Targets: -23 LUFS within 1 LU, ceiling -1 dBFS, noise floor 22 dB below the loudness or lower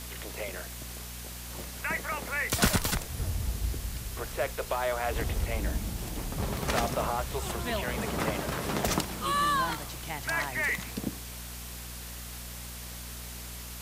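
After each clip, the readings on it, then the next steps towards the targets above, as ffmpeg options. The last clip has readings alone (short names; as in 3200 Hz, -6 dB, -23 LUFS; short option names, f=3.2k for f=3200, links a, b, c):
hum 60 Hz; harmonics up to 240 Hz; hum level -41 dBFS; noise floor -41 dBFS; noise floor target -54 dBFS; loudness -32.0 LUFS; peak -12.0 dBFS; loudness target -23.0 LUFS
-> -af "bandreject=f=60:t=h:w=4,bandreject=f=120:t=h:w=4,bandreject=f=180:t=h:w=4,bandreject=f=240:t=h:w=4"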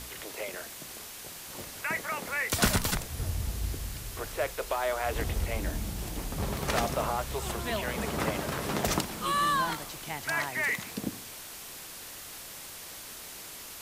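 hum none; noise floor -44 dBFS; noise floor target -55 dBFS
-> -af "afftdn=nr=11:nf=-44"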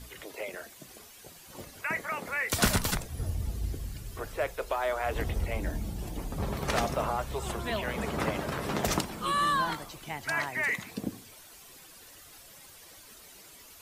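noise floor -52 dBFS; noise floor target -54 dBFS
-> -af "afftdn=nr=6:nf=-52"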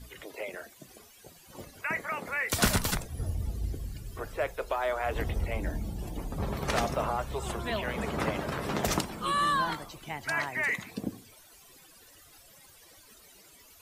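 noise floor -56 dBFS; loudness -32.0 LUFS; peak -12.5 dBFS; loudness target -23.0 LUFS
-> -af "volume=9dB"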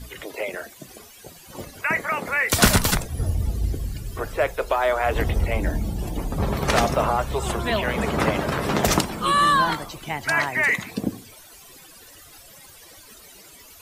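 loudness -23.0 LUFS; peak -3.5 dBFS; noise floor -47 dBFS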